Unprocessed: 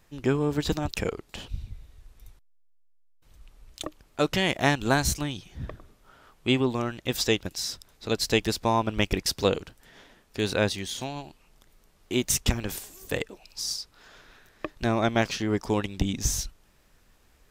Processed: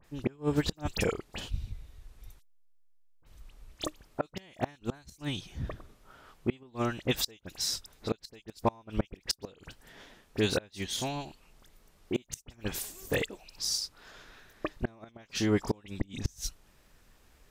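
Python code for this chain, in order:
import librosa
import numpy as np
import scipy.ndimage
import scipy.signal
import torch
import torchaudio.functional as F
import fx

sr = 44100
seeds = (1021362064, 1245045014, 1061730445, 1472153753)

y = fx.dispersion(x, sr, late='highs', ms=44.0, hz=2800.0)
y = fx.gate_flip(y, sr, shuts_db=-16.0, range_db=-30)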